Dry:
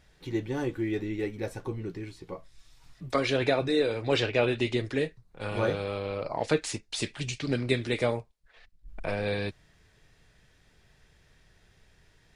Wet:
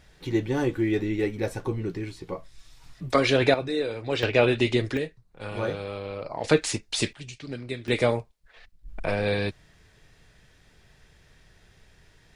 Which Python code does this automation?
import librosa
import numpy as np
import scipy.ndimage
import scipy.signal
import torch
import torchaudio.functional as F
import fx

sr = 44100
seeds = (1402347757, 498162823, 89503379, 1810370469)

y = fx.gain(x, sr, db=fx.steps((0.0, 5.5), (3.54, -2.0), (4.23, 5.0), (4.97, -1.5), (6.44, 5.5), (7.13, -7.0), (7.88, 4.5)))